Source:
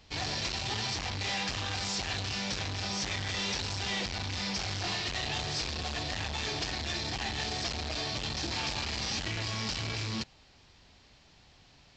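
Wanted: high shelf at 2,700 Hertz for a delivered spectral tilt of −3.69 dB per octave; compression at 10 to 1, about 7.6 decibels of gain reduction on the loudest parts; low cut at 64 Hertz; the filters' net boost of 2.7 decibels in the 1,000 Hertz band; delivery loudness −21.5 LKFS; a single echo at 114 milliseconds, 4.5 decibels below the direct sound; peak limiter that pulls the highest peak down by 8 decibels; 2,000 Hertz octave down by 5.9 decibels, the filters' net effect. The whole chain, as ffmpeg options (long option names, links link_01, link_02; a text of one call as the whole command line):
ffmpeg -i in.wav -af "highpass=64,equalizer=frequency=1000:width_type=o:gain=5.5,equalizer=frequency=2000:width_type=o:gain=-7,highshelf=frequency=2700:gain=-4,acompressor=threshold=-39dB:ratio=10,alimiter=level_in=14dB:limit=-24dB:level=0:latency=1,volume=-14dB,aecho=1:1:114:0.596,volume=23.5dB" out.wav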